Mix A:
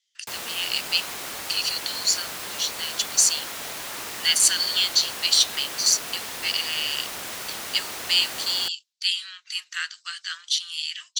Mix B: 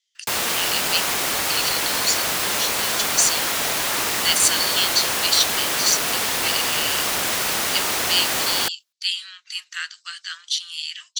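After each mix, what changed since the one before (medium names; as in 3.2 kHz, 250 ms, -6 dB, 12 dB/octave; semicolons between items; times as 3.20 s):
background +11.5 dB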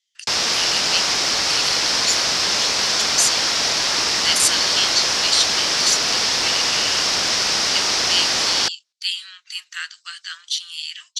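background: add resonant low-pass 5.3 kHz, resonance Q 3.8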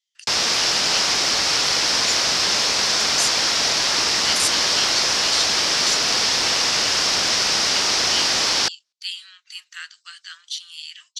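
speech -6.0 dB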